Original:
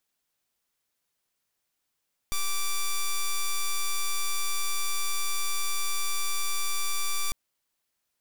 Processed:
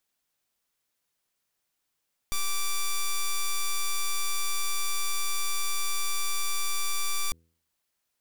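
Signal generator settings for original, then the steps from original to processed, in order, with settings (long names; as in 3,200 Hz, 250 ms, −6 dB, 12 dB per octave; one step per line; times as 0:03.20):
pulse wave 1,170 Hz, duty 6% −26 dBFS 5.00 s
hum removal 82.46 Hz, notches 6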